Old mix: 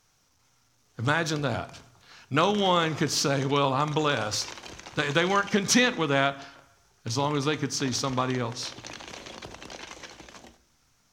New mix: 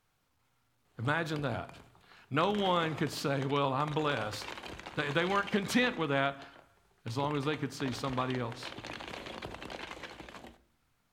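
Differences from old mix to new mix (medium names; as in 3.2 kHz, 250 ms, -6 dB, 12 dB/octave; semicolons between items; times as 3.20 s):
speech -6.0 dB; master: add peaking EQ 5.9 kHz -14.5 dB 0.63 oct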